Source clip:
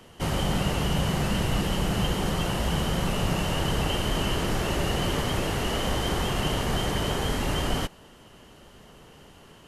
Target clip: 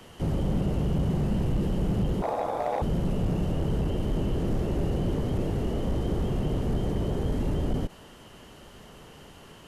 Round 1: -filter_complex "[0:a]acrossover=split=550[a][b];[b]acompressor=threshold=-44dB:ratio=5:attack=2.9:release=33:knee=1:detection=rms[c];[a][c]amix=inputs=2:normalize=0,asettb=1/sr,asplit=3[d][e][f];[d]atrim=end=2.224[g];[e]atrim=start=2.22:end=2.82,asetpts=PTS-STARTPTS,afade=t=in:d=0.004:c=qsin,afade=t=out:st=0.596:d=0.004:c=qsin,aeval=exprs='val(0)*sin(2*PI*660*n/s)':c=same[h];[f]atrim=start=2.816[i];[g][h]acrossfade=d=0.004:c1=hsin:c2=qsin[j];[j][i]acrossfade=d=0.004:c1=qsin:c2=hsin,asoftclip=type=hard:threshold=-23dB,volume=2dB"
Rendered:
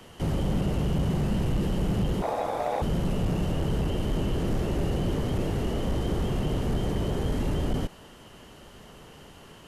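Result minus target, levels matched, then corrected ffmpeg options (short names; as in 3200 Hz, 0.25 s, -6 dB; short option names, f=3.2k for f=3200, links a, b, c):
compressor: peak gain reduction -5 dB
-filter_complex "[0:a]acrossover=split=550[a][b];[b]acompressor=threshold=-50.5dB:ratio=5:attack=2.9:release=33:knee=1:detection=rms[c];[a][c]amix=inputs=2:normalize=0,asettb=1/sr,asplit=3[d][e][f];[d]atrim=end=2.224[g];[e]atrim=start=2.22:end=2.82,asetpts=PTS-STARTPTS,afade=t=in:d=0.004:c=qsin,afade=t=out:st=0.596:d=0.004:c=qsin,aeval=exprs='val(0)*sin(2*PI*660*n/s)':c=same[h];[f]atrim=start=2.816[i];[g][h]acrossfade=d=0.004:c1=hsin:c2=qsin[j];[j][i]acrossfade=d=0.004:c1=qsin:c2=hsin,asoftclip=type=hard:threshold=-23dB,volume=2dB"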